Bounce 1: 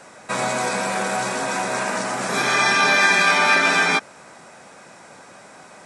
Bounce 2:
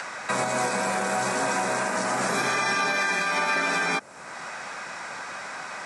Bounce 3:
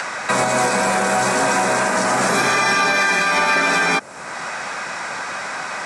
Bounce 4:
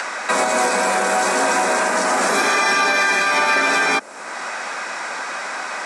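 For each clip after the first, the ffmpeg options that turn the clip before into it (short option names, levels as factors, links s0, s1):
-filter_complex "[0:a]equalizer=f=3200:w=1.5:g=-5,acrossover=split=150|970|5600[s0][s1][s2][s3];[s2]acompressor=mode=upward:threshold=0.0631:ratio=2.5[s4];[s0][s1][s4][s3]amix=inputs=4:normalize=0,alimiter=limit=0.168:level=0:latency=1:release=206"
-af "asoftclip=type=tanh:threshold=0.141,volume=2.82"
-af "highpass=f=230:w=0.5412,highpass=f=230:w=1.3066"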